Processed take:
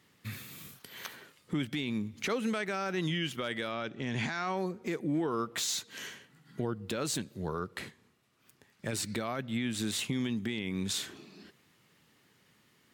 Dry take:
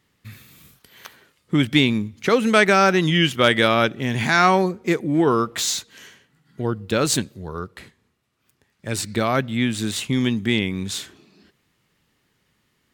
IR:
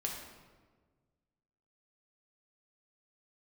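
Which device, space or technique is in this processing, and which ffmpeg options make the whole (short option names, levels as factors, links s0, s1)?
podcast mastering chain: -filter_complex "[0:a]asettb=1/sr,asplit=3[s0][s1][s2];[s0]atrim=end=3.714[s3];[s1]atrim=start=3.71:end=4.57,asetpts=PTS-STARTPTS,afade=t=in:d=0.004:c=qsin,afade=t=out:st=0.856:d=0.004:c=qsin,lowpass=f=7600:w=0.5412,lowpass=f=7600:w=1.3066[s4];[s2]atrim=start=4.566[s5];[s3][s4]acrossfade=d=0.004:c1=hsin:c2=qsin[s6];[s6][s5]acrossfade=d=0.004:c1=qsin:c2=hsin,highpass=110,acompressor=threshold=0.0251:ratio=4,alimiter=level_in=1.12:limit=0.0631:level=0:latency=1:release=11,volume=0.891,volume=1.26" -ar 44100 -c:a libmp3lame -b:a 96k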